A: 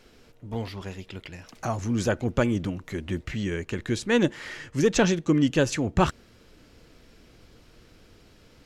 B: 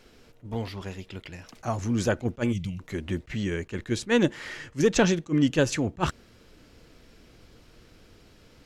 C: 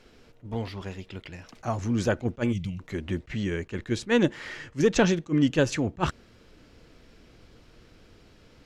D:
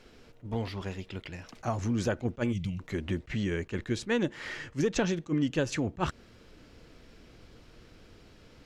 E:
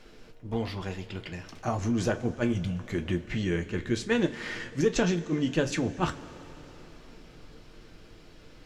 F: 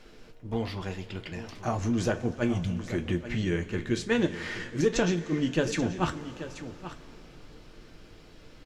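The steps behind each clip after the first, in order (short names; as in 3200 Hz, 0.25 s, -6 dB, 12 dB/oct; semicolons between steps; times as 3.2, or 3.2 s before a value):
spectral gain 2.52–2.79, 200–2000 Hz -17 dB; attack slew limiter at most 400 dB/s
high shelf 8900 Hz -10 dB
compressor 2.5:1, threshold -27 dBFS, peak gain reduction 8 dB
two-slope reverb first 0.2 s, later 4.3 s, from -22 dB, DRR 5.5 dB; gain +1.5 dB
echo 0.833 s -12.5 dB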